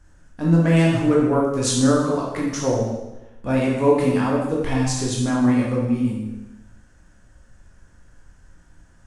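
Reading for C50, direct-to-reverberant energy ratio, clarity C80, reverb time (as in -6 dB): 1.5 dB, -4.0 dB, 4.0 dB, 1.0 s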